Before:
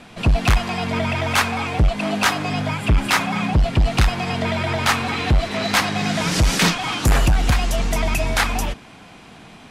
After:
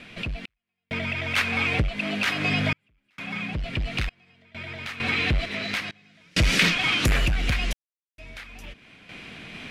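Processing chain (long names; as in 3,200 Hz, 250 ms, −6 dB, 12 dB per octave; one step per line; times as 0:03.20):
drawn EQ curve 580 Hz 0 dB, 840 Hz −8 dB, 2,300 Hz +9 dB, 7,300 Hz −4 dB
downward compressor 4 to 1, threshold −27 dBFS, peak gain reduction 14.5 dB
sample-and-hold tremolo 2.2 Hz, depth 100%
level +7 dB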